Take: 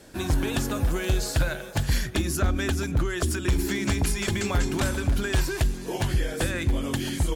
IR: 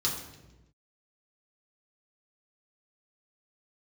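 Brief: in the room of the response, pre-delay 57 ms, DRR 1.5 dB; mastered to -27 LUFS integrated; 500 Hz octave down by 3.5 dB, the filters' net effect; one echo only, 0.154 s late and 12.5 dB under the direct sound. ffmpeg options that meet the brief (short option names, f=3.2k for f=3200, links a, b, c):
-filter_complex "[0:a]equalizer=f=500:t=o:g=-5,aecho=1:1:154:0.237,asplit=2[a][b];[1:a]atrim=start_sample=2205,adelay=57[c];[b][c]afir=irnorm=-1:irlink=0,volume=-8dB[d];[a][d]amix=inputs=2:normalize=0,volume=-4dB"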